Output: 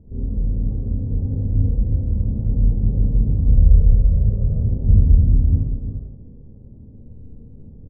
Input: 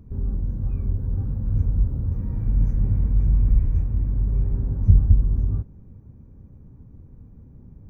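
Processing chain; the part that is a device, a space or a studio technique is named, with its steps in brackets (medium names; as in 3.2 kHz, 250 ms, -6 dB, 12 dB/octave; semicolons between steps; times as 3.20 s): 3.47–4.65 s: comb 1.7 ms, depth 95%; under water (low-pass 700 Hz 24 dB/octave; peaking EQ 470 Hz +4.5 dB 0.34 oct); delay 342 ms -5.5 dB; Schroeder reverb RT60 0.71 s, combs from 27 ms, DRR -5 dB; trim -2 dB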